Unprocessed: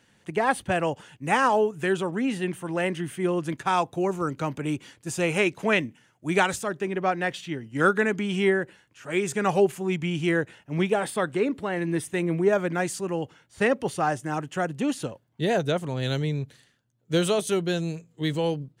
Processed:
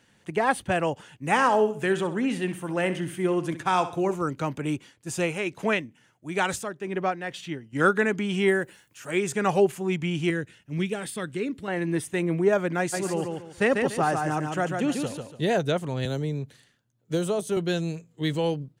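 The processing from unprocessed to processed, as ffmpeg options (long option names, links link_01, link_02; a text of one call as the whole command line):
ffmpeg -i in.wav -filter_complex "[0:a]asplit=3[link_01][link_02][link_03];[link_01]afade=type=out:start_time=1.35:duration=0.02[link_04];[link_02]aecho=1:1:65|130|195|260:0.237|0.0877|0.0325|0.012,afade=type=in:start_time=1.35:duration=0.02,afade=type=out:start_time=4.14:duration=0.02[link_05];[link_03]afade=type=in:start_time=4.14:duration=0.02[link_06];[link_04][link_05][link_06]amix=inputs=3:normalize=0,asettb=1/sr,asplit=3[link_07][link_08][link_09];[link_07]atrim=end=4.724[link_10];[link_08]atrim=start=4.72:end=7.73,asetpts=PTS-STARTPTS,afade=type=in:duration=0.004:curve=qsin,afade=type=out:start_time=3.006:duration=0.004:curve=qsin,tremolo=f=2.2:d=0.57[link_11];[link_09]atrim=start=7.726[link_12];[link_10][link_11]acrossfade=duration=0.004:curve1=hsin:curve2=qsin[link_13];[link_13][link_12]acrossfade=duration=0.004:curve1=qsin:curve2=hsin,asettb=1/sr,asplit=3[link_14][link_15][link_16];[link_14]atrim=end=8.484[link_17];[link_15]atrim=start=8.48:end=9.11,asetpts=PTS-STARTPTS,afade=type=in:duration=0.004:curve=qsin,afade=type=out:start_time=0.626:duration=0.004:curve=qsin,aemphasis=mode=production:type=50fm[link_18];[link_16]atrim=start=9.106[link_19];[link_17][link_18]acrossfade=duration=0.004:curve1=hsin:curve2=qsin[link_20];[link_20][link_19]acrossfade=duration=0.004:curve1=qsin:curve2=hsin,asettb=1/sr,asplit=3[link_21][link_22][link_23];[link_21]atrim=end=10.304[link_24];[link_22]atrim=start=10.3:end=11.68,asetpts=PTS-STARTPTS,afade=type=in:duration=0.004:curve=qsin,afade=type=out:start_time=1.376:duration=0.004:curve=qsin,equalizer=frequency=800:width_type=o:width=1.8:gain=-13[link_25];[link_23]atrim=start=11.676[link_26];[link_24][link_25]acrossfade=duration=0.004:curve1=hsin:curve2=qsin[link_27];[link_27][link_26]acrossfade=duration=0.004:curve1=qsin:curve2=hsin,asplit=3[link_28][link_29][link_30];[link_28]afade=type=out:start_time=12.92:duration=0.02[link_31];[link_29]aecho=1:1:144|288|432|576:0.596|0.167|0.0467|0.0131,afade=type=in:start_time=12.92:duration=0.02,afade=type=out:start_time=15.52:duration=0.02[link_32];[link_30]afade=type=in:start_time=15.52:duration=0.02[link_33];[link_31][link_32][link_33]amix=inputs=3:normalize=0,asettb=1/sr,asplit=3[link_34][link_35][link_36];[link_34]atrim=end=16.054[link_37];[link_35]atrim=start=16.05:end=17.57,asetpts=PTS-STARTPTS,afade=type=in:duration=0.004:curve=qsin,afade=type=out:start_time=1.516:duration=0.004:curve=qsin,acrossover=split=150|1300|5100[link_38][link_39][link_40][link_41];[link_38]acompressor=threshold=-39dB:ratio=3[link_42];[link_39]acompressor=threshold=-23dB:ratio=3[link_43];[link_40]acompressor=threshold=-50dB:ratio=3[link_44];[link_41]acompressor=threshold=-40dB:ratio=3[link_45];[link_42][link_43][link_44][link_45]amix=inputs=4:normalize=0[link_46];[link_36]atrim=start=17.566[link_47];[link_37][link_46]acrossfade=duration=0.004:curve1=hsin:curve2=qsin[link_48];[link_48][link_47]acrossfade=duration=0.004:curve1=qsin:curve2=hsin" out.wav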